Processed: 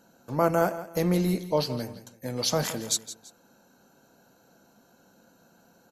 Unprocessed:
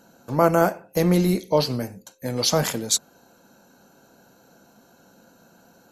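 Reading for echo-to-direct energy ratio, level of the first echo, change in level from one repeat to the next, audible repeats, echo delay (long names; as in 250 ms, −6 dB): −13.5 dB, −14.0 dB, −10.0 dB, 2, 167 ms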